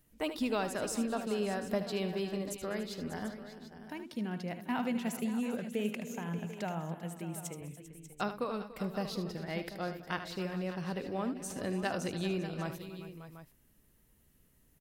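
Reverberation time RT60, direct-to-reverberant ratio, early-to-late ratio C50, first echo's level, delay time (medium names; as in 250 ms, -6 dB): no reverb, no reverb, no reverb, -10.5 dB, 76 ms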